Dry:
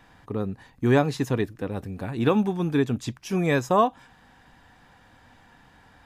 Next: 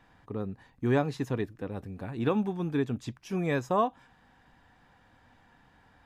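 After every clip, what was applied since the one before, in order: high shelf 4200 Hz -6 dB; gain -6 dB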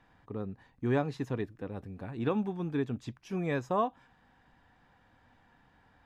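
high shelf 7000 Hz -8 dB; gain -3 dB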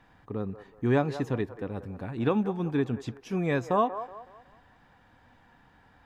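band-limited delay 0.186 s, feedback 36%, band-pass 830 Hz, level -11 dB; gain +4.5 dB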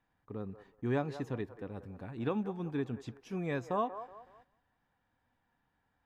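gate -53 dBFS, range -11 dB; gain -8 dB

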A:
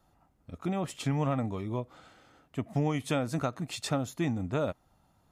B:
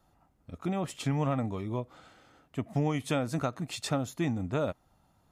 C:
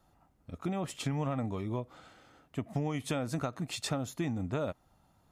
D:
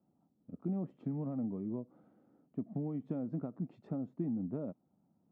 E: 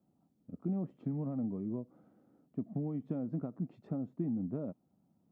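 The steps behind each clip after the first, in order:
nothing audible
compressor, threshold -29 dBFS, peak gain reduction 5.5 dB
ladder band-pass 250 Hz, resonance 40%; gain +8 dB
low shelf 120 Hz +4.5 dB; notch 880 Hz, Q 28

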